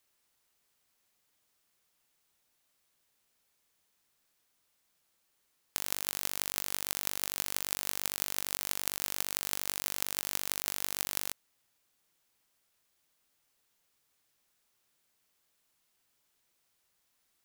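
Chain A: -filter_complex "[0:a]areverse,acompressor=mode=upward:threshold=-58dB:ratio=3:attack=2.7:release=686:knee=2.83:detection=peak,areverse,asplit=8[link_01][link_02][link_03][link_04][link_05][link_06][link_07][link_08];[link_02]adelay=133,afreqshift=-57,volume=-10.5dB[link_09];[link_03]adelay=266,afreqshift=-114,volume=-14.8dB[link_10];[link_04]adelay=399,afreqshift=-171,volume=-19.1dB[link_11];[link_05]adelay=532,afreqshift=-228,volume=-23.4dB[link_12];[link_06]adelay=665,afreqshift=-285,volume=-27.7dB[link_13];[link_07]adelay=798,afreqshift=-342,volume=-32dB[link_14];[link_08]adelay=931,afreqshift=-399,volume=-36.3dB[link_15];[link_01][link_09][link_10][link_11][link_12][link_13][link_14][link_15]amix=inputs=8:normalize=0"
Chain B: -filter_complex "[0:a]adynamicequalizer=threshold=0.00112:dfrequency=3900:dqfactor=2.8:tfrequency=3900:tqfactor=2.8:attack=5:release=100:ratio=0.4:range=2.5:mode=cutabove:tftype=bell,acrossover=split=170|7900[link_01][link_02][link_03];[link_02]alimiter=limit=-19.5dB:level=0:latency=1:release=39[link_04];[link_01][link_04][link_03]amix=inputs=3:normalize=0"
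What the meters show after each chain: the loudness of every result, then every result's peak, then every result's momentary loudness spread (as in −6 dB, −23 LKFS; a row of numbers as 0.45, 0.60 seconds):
−33.0, −34.0 LKFS; −2.0, −6.5 dBFS; 3, 1 LU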